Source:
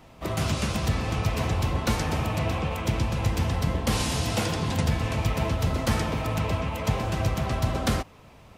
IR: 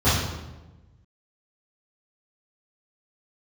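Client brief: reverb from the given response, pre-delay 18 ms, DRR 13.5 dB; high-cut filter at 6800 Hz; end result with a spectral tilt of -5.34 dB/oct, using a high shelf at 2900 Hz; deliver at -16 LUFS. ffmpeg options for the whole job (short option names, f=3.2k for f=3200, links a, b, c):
-filter_complex "[0:a]lowpass=6.8k,highshelf=f=2.9k:g=6.5,asplit=2[a][b];[1:a]atrim=start_sample=2205,adelay=18[c];[b][c]afir=irnorm=-1:irlink=0,volume=-32.5dB[d];[a][d]amix=inputs=2:normalize=0,volume=7.5dB"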